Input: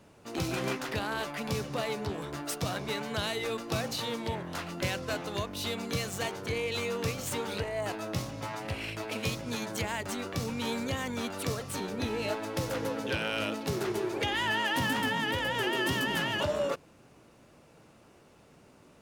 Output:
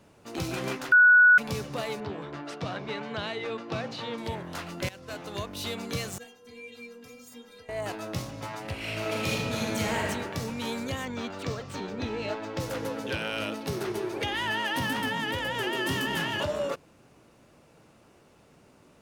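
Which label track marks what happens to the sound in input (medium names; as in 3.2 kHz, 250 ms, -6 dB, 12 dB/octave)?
0.920000	1.380000	bleep 1.47 kHz -13 dBFS
2.000000	4.180000	band-pass 110–3500 Hz
4.890000	5.640000	fade in equal-power, from -17.5 dB
6.180000	7.690000	inharmonic resonator 240 Hz, decay 0.34 s, inharmonicity 0.008
8.780000	10.030000	reverb throw, RT60 1.6 s, DRR -3.5 dB
11.050000	12.600000	boxcar filter over 4 samples
13.160000	15.120000	band-stop 7.2 kHz
15.860000	16.440000	doubling 30 ms -7.5 dB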